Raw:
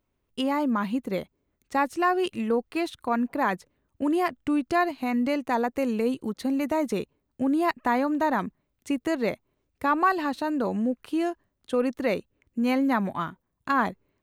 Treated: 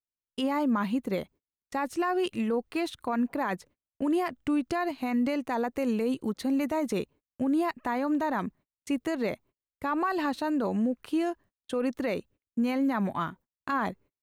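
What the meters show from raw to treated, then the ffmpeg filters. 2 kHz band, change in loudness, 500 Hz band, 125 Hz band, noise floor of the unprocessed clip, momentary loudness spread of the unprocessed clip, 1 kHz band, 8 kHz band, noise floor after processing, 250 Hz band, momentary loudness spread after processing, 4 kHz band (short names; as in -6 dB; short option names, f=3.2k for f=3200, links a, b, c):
-5.0 dB, -3.0 dB, -3.5 dB, -1.0 dB, -78 dBFS, 8 LU, -5.0 dB, -1.5 dB, under -85 dBFS, -2.0 dB, 8 LU, -2.5 dB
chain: -af "agate=range=-32dB:threshold=-50dB:ratio=16:detection=peak,alimiter=limit=-20.5dB:level=0:latency=1:release=47"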